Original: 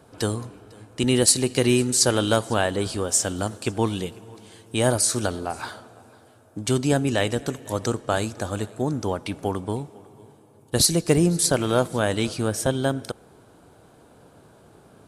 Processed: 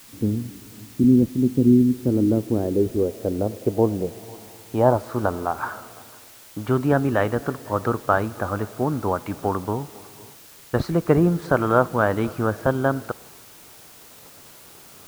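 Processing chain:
low-pass filter sweep 250 Hz → 1,300 Hz, 0:01.85–0:05.70
downward expander −45 dBFS
bit-depth reduction 8 bits, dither triangular
level +1 dB

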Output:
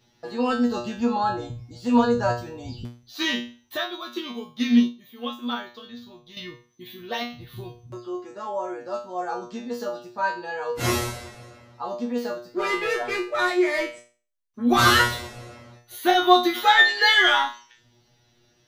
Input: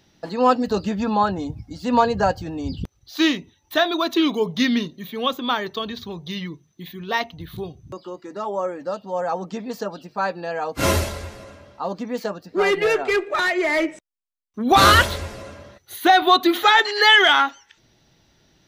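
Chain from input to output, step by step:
tuned comb filter 120 Hz, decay 0.37 s, harmonics all, mix 100%
0:03.77–0:06.37: expander for the loud parts 1.5 to 1, over −40 dBFS
level +8.5 dB

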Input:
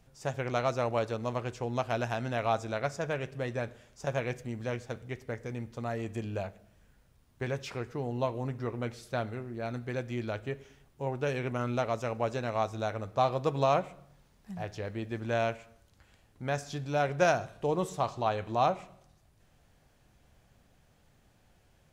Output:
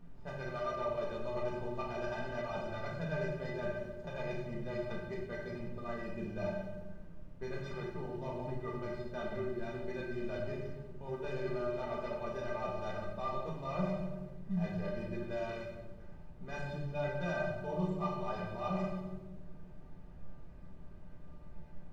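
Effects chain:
running median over 15 samples
reversed playback
downward compressor 6 to 1, threshold −41 dBFS, peak gain reduction 18.5 dB
reversed playback
high-frequency loss of the air 110 metres
stiff-string resonator 180 Hz, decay 0.24 s, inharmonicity 0.03
background noise brown −73 dBFS
echo with a time of its own for lows and highs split 470 Hz, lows 210 ms, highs 94 ms, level −13 dB
rectangular room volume 570 cubic metres, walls mixed, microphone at 1.8 metres
one half of a high-frequency compander decoder only
level +15 dB

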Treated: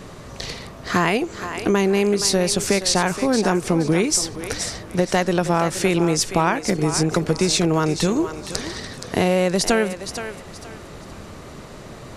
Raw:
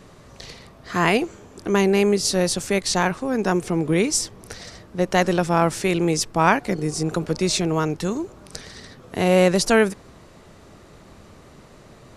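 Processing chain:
downward compressor, threshold −24 dBFS, peak gain reduction 13 dB
on a send: feedback echo with a high-pass in the loop 472 ms, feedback 30%, high-pass 480 Hz, level −9 dB
on the sum: level +8.5 dB

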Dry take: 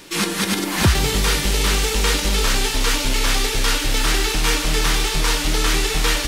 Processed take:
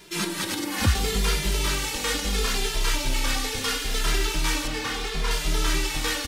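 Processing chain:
0:04.67–0:05.31: high-shelf EQ 6,100 Hz −11 dB
log-companded quantiser 8 bits
barber-pole flanger 2.5 ms −0.74 Hz
level −3.5 dB

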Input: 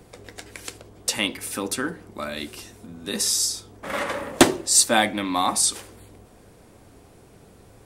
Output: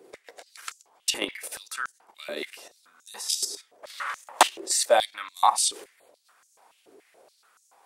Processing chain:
output level in coarse steps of 11 dB
high-pass on a step sequencer 7 Hz 390–6,500 Hz
level −2.5 dB

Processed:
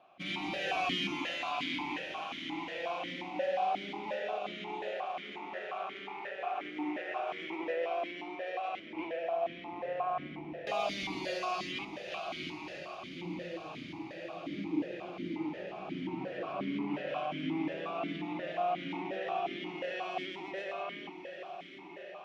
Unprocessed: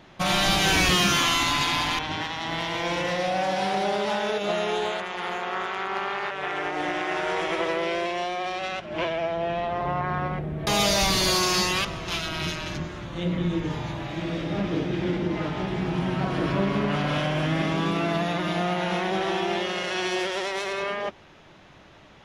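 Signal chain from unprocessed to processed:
feedback delay with all-pass diffusion 1,167 ms, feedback 53%, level −9 dB
formant filter that steps through the vowels 5.6 Hz

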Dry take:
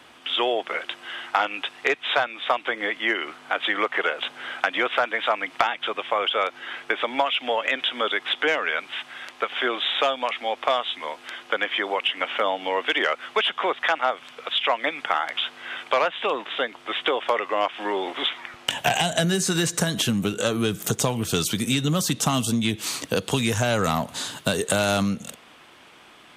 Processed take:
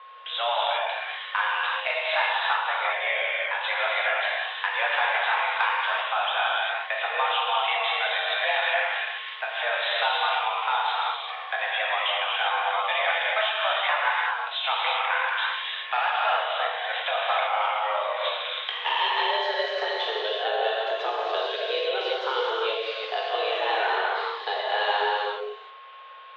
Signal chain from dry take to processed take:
reverb whose tail is shaped and stops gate 420 ms flat, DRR −5.5 dB
steady tone 860 Hz −37 dBFS
single-sideband voice off tune +220 Hz 230–3,500 Hz
level −6.5 dB

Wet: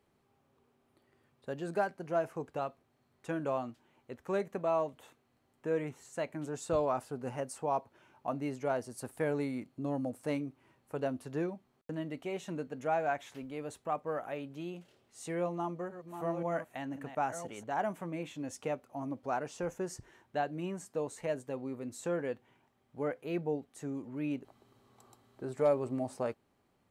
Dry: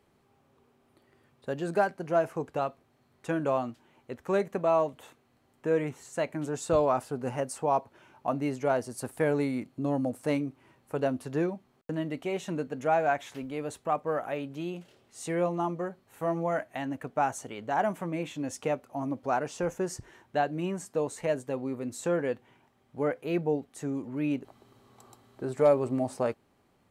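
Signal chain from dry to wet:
0:15.38–0:17.64: delay that plays each chunk backwards 524 ms, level −8.5 dB
level −6 dB

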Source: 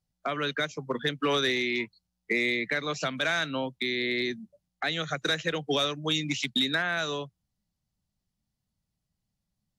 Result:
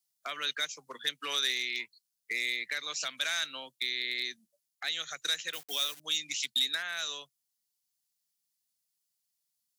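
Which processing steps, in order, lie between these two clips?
0:05.53–0:06.00: hold until the input has moved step −40.5 dBFS
first difference
speech leveller within 3 dB 2 s
level +5.5 dB

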